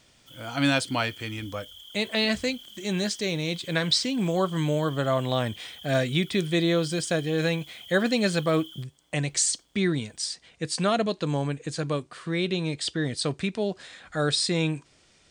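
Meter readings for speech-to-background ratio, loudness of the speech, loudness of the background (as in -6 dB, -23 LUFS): 17.0 dB, -27.0 LUFS, -44.0 LUFS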